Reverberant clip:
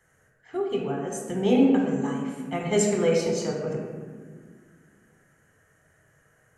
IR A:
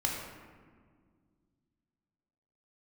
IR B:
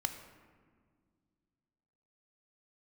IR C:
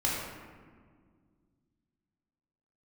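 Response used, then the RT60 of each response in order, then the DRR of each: A; 1.8, 1.9, 1.8 s; -1.5, 7.5, -5.5 dB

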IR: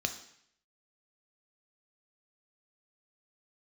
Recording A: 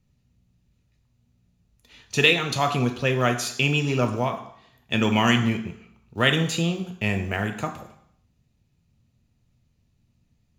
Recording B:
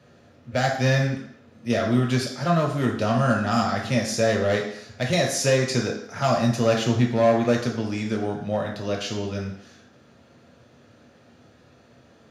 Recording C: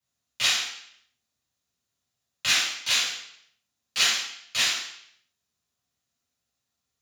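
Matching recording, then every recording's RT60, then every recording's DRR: A; 0.65, 0.65, 0.65 s; 6.0, 0.0, -9.0 dB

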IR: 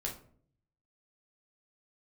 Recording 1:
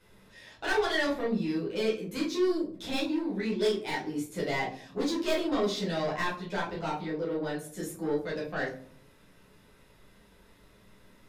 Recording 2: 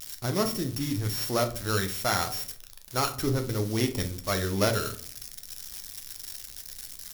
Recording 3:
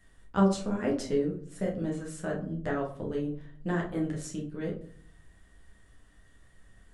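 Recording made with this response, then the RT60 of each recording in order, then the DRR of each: 3; 0.55, 0.55, 0.55 s; -7.5, 5.5, -2.0 dB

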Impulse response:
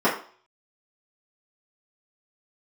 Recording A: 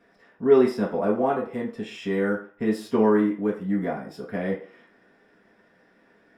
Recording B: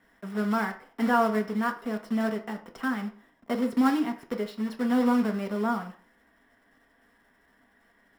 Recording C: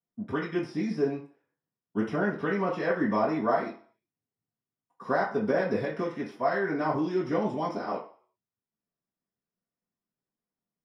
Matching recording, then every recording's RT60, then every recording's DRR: C; 0.45, 0.45, 0.45 s; -6.5, 3.0, -10.5 dB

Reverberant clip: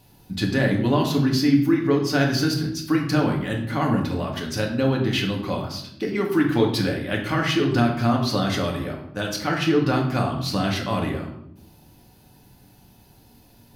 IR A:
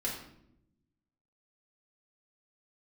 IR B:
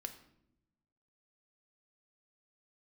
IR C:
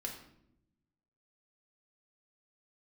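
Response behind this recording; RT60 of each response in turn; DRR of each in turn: C; 0.80, 0.80, 0.80 s; -6.0, 6.0, -1.0 dB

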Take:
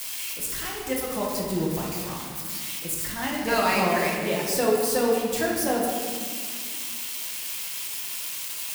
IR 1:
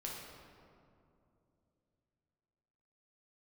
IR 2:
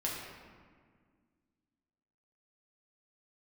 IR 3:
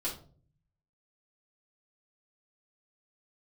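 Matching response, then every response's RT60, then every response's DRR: 2; 2.7, 1.8, 0.45 s; -4.0, -4.5, -6.5 dB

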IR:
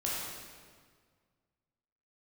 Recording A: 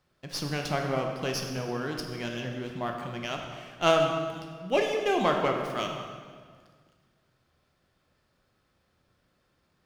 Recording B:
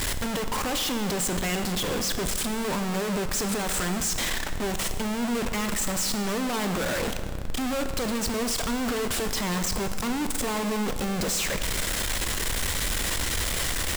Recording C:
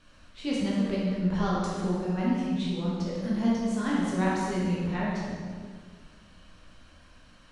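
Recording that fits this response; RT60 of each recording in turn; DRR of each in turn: C; 1.7, 1.7, 1.7 s; 2.0, 7.5, -6.5 dB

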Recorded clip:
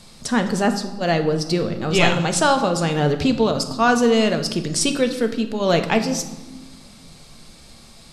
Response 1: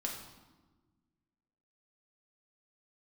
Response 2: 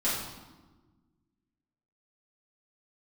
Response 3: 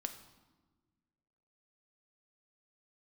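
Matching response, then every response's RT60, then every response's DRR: 3; 1.3, 1.3, 1.4 s; -1.0, -10.5, 7.0 dB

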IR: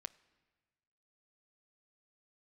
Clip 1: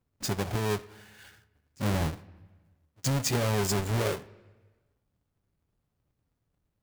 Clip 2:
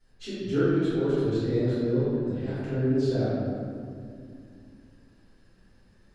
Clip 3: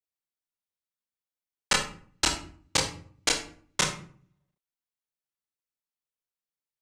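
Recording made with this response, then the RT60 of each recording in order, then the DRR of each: 1; 1.4, 2.4, 0.50 s; 14.5, -16.0, -1.5 dB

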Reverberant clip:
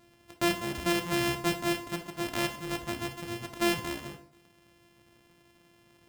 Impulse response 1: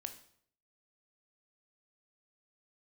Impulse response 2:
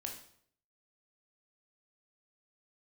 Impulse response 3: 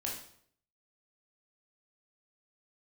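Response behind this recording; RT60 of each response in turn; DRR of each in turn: 1; 0.65, 0.65, 0.65 s; 7.0, 1.0, -3.0 dB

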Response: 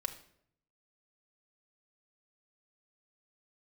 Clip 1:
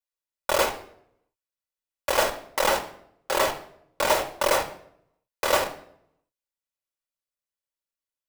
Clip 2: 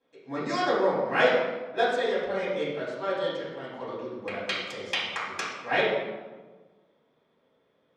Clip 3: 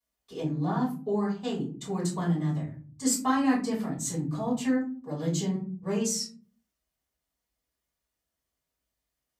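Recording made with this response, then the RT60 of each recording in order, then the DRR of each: 1; 0.70, 1.3, 0.40 s; 3.5, -11.0, -10.5 dB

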